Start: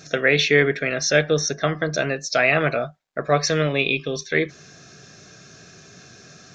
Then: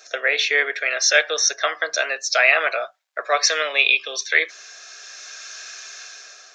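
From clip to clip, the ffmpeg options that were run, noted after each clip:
-filter_complex "[0:a]highpass=f=540:w=0.5412,highpass=f=540:w=1.3066,acrossover=split=1200[s0][s1];[s1]dynaudnorm=f=210:g=7:m=4.73[s2];[s0][s2]amix=inputs=2:normalize=0,volume=0.891"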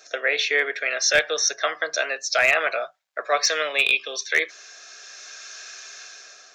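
-af "asoftclip=type=hard:threshold=0.473,lowshelf=f=240:g=12,volume=0.708"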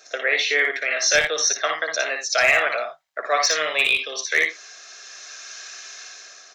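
-af "aecho=1:1:58|59|84:0.562|0.501|0.188"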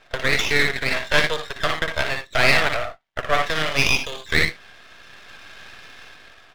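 -af "aresample=8000,aresample=44100,aeval=exprs='max(val(0),0)':c=same,volume=1.78"

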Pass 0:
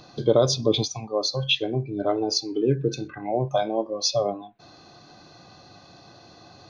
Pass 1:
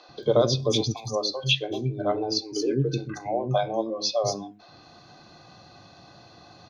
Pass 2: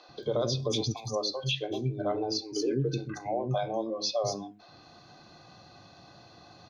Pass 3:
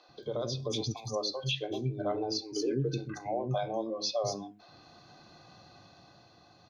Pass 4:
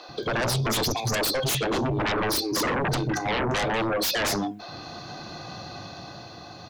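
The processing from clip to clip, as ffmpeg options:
-filter_complex "[0:a]acrossover=split=370|6000[s0][s1][s2];[s0]adelay=90[s3];[s2]adelay=230[s4];[s3][s1][s4]amix=inputs=3:normalize=0"
-af "alimiter=limit=0.141:level=0:latency=1:release=35,volume=0.708"
-af "dynaudnorm=f=120:g=13:m=1.58,volume=0.501"
-af "aeval=exprs='0.0794*sin(PI/2*4.47*val(0)/0.0794)':c=same"

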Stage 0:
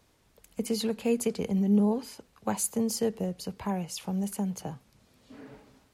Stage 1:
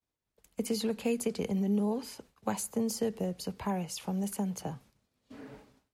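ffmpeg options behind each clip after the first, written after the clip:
-filter_complex "[0:a]agate=range=0.0224:threshold=0.00282:ratio=3:detection=peak,acrossover=split=220|1800[s0][s1][s2];[s0]acompressor=threshold=0.0141:ratio=4[s3];[s1]acompressor=threshold=0.0355:ratio=4[s4];[s2]acompressor=threshold=0.0158:ratio=4[s5];[s3][s4][s5]amix=inputs=3:normalize=0"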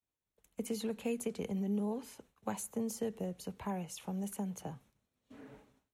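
-af "equalizer=f=4800:t=o:w=0.2:g=-11.5,volume=0.531"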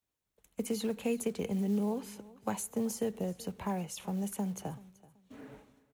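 -af "acrusher=bits=7:mode=log:mix=0:aa=0.000001,aecho=1:1:381|762:0.0891|0.0241,volume=1.5"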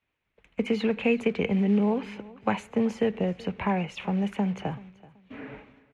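-af "lowpass=f=2400:t=q:w=2.7,volume=2.51"

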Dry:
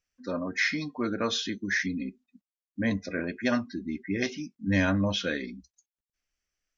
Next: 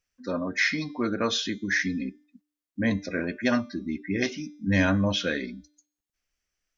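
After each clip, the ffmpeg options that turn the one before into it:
-af "bandreject=f=296.8:t=h:w=4,bandreject=f=593.6:t=h:w=4,bandreject=f=890.4:t=h:w=4,bandreject=f=1187.2:t=h:w=4,bandreject=f=1484:t=h:w=4,bandreject=f=1780.8:t=h:w=4,bandreject=f=2077.6:t=h:w=4,bandreject=f=2374.4:t=h:w=4,bandreject=f=2671.2:t=h:w=4,bandreject=f=2968:t=h:w=4,bandreject=f=3264.8:t=h:w=4,bandreject=f=3561.6:t=h:w=4,bandreject=f=3858.4:t=h:w=4,bandreject=f=4155.2:t=h:w=4,bandreject=f=4452:t=h:w=4,bandreject=f=4748.8:t=h:w=4,bandreject=f=5045.6:t=h:w=4,bandreject=f=5342.4:t=h:w=4,bandreject=f=5639.2:t=h:w=4,bandreject=f=5936:t=h:w=4,bandreject=f=6232.8:t=h:w=4,bandreject=f=6529.6:t=h:w=4,bandreject=f=6826.4:t=h:w=4,bandreject=f=7123.2:t=h:w=4,bandreject=f=7420:t=h:w=4,bandreject=f=7716.8:t=h:w=4,bandreject=f=8013.6:t=h:w=4,bandreject=f=8310.4:t=h:w=4,bandreject=f=8607.2:t=h:w=4,bandreject=f=8904:t=h:w=4,bandreject=f=9200.8:t=h:w=4,bandreject=f=9497.6:t=h:w=4,bandreject=f=9794.4:t=h:w=4,bandreject=f=10091.2:t=h:w=4,bandreject=f=10388:t=h:w=4,volume=1.33"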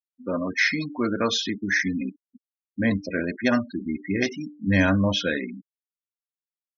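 -af "aeval=exprs='0.299*(cos(1*acos(clip(val(0)/0.299,-1,1)))-cos(1*PI/2))+0.00531*(cos(3*acos(clip(val(0)/0.299,-1,1)))-cos(3*PI/2))':c=same,afftfilt=real='re*gte(hypot(re,im),0.0224)':imag='im*gte(hypot(re,im),0.0224)':win_size=1024:overlap=0.75,volume=1.41"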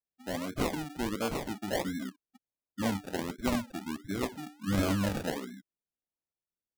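-af "acrusher=samples=33:mix=1:aa=0.000001:lfo=1:lforange=19.8:lforate=1.4,volume=0.376"

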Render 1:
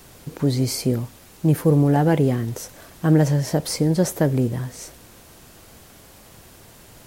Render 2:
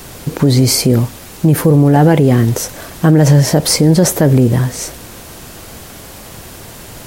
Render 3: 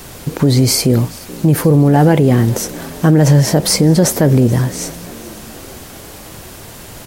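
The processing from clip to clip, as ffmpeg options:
-af "alimiter=level_in=5.62:limit=0.891:release=50:level=0:latency=1,volume=0.891"
-filter_complex "[0:a]asplit=6[s0][s1][s2][s3][s4][s5];[s1]adelay=430,afreqshift=47,volume=0.0891[s6];[s2]adelay=860,afreqshift=94,volume=0.0519[s7];[s3]adelay=1290,afreqshift=141,volume=0.0299[s8];[s4]adelay=1720,afreqshift=188,volume=0.0174[s9];[s5]adelay=2150,afreqshift=235,volume=0.0101[s10];[s0][s6][s7][s8][s9][s10]amix=inputs=6:normalize=0,volume=0.891"

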